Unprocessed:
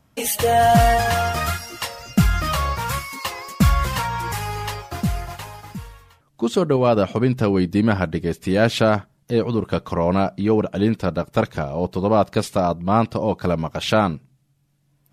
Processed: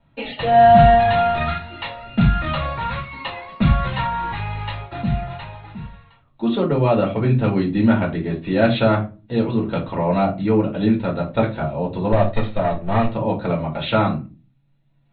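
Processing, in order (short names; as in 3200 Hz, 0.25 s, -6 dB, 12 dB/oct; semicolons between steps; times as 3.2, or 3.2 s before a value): 12.12–13.08 minimum comb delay 1.6 ms; Chebyshev low-pass 4100 Hz, order 8; reverb RT60 0.30 s, pre-delay 3 ms, DRR -3.5 dB; gain -6 dB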